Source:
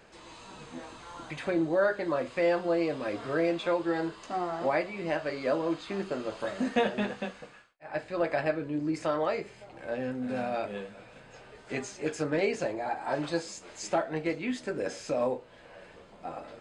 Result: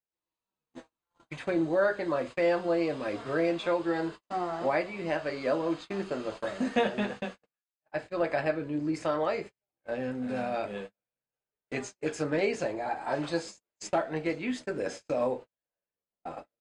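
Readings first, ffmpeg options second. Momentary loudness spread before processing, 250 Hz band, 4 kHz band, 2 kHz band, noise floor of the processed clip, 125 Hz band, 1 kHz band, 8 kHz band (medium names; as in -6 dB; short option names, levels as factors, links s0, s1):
17 LU, 0.0 dB, -0.5 dB, 0.0 dB, under -85 dBFS, 0.0 dB, 0.0 dB, -2.0 dB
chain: -af "agate=range=0.00501:threshold=0.0112:ratio=16:detection=peak"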